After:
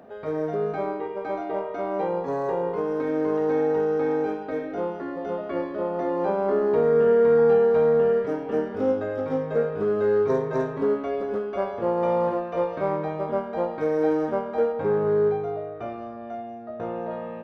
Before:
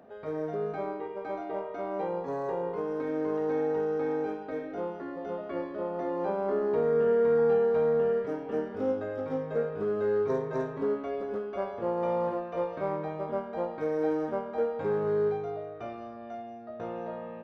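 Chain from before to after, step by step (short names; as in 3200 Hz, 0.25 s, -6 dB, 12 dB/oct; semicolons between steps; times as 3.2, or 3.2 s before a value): 14.72–17.11 high shelf 3100 Hz -8.5 dB; gain +6 dB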